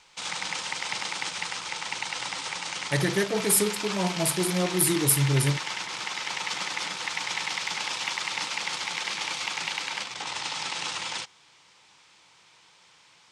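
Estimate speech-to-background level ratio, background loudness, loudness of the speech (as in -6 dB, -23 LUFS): 6.0 dB, -30.5 LUFS, -24.5 LUFS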